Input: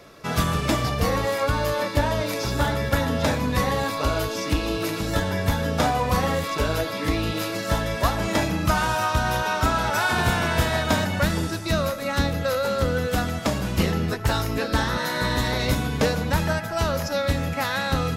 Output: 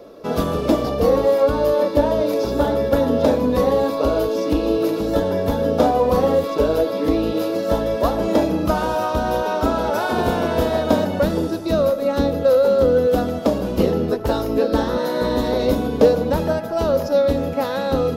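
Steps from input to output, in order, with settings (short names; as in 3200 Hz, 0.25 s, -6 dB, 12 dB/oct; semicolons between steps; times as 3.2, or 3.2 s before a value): graphic EQ 125/250/500/2000/8000 Hz -8/+7/+11/-9/-9 dB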